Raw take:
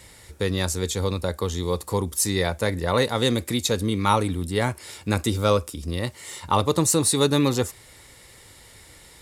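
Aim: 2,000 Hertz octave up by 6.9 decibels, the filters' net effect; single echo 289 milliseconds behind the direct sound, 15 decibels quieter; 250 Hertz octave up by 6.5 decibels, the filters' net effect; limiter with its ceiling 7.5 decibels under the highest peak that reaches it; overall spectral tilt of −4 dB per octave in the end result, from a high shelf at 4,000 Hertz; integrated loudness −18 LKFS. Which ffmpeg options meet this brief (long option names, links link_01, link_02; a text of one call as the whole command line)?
ffmpeg -i in.wav -af "equalizer=frequency=250:width_type=o:gain=8,equalizer=frequency=2000:width_type=o:gain=6.5,highshelf=frequency=4000:gain=7.5,alimiter=limit=-8.5dB:level=0:latency=1,aecho=1:1:289:0.178,volume=3.5dB" out.wav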